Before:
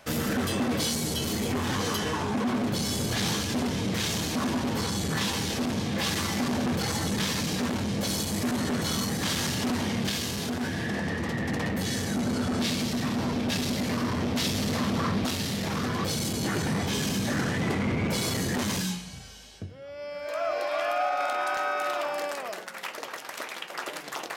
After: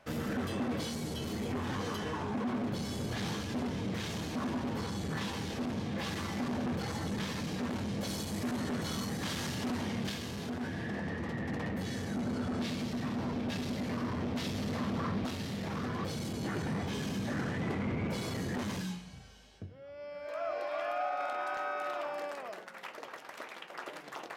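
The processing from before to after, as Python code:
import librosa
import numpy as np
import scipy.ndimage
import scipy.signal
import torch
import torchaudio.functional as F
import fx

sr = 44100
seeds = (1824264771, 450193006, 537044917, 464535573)

y = fx.high_shelf(x, sr, hz=3700.0, db=fx.steps((0.0, -11.0), (7.69, -6.0), (10.13, -11.0)))
y = y * librosa.db_to_amplitude(-6.5)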